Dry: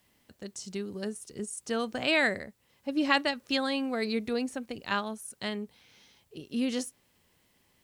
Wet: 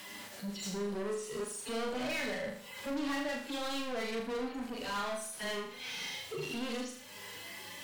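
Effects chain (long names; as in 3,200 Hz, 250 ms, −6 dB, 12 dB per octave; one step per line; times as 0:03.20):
harmonic-percussive split with one part muted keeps harmonic
downward compressor 2.5 to 1, threshold −52 dBFS, peak gain reduction 19.5 dB
flanger 0.28 Hz, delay 9.8 ms, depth 2.8 ms, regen +61%
mid-hump overdrive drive 35 dB, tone 6,400 Hz, clips at −34.5 dBFS
flutter between parallel walls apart 6.8 metres, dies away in 0.56 s
level +3 dB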